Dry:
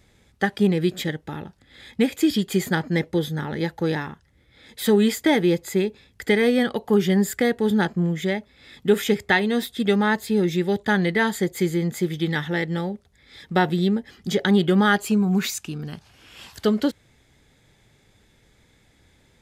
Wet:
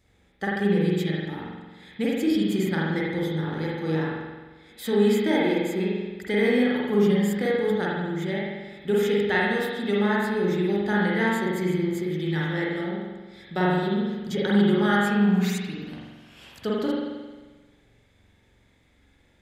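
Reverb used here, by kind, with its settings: spring tank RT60 1.3 s, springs 44 ms, chirp 40 ms, DRR -5.5 dB; gain -9 dB

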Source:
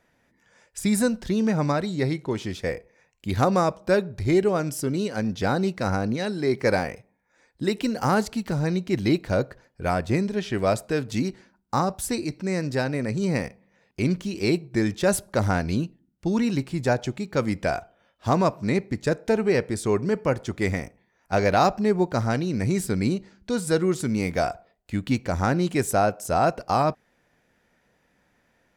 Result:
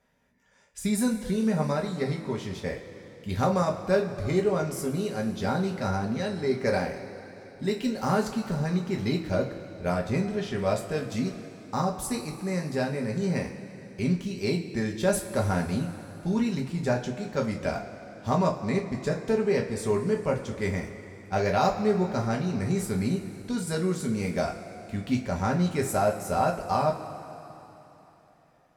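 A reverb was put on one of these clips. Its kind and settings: two-slope reverb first 0.24 s, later 3.6 s, from -19 dB, DRR 0 dB; gain -7 dB

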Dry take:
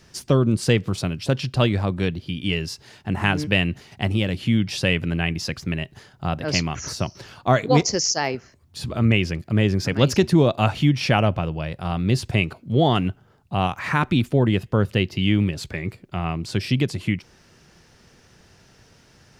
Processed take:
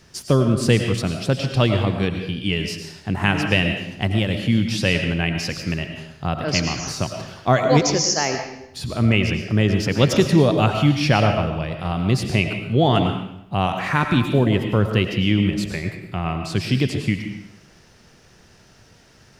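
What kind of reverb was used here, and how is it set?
digital reverb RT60 0.78 s, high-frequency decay 0.95×, pre-delay 65 ms, DRR 5 dB; gain +1 dB

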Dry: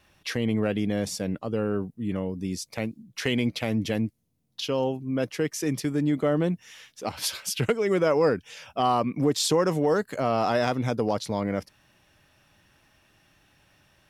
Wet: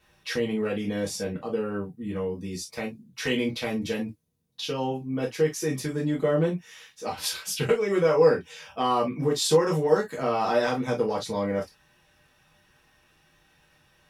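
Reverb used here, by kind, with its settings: non-linear reverb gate 80 ms falling, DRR -5 dB; gain -6 dB

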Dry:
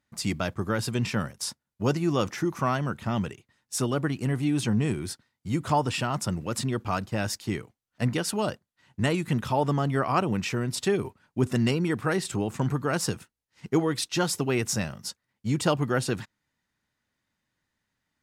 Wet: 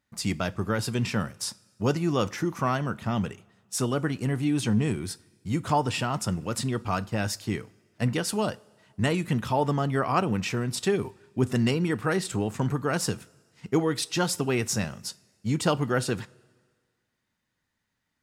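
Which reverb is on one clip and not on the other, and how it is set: two-slope reverb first 0.26 s, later 1.7 s, from -18 dB, DRR 15 dB

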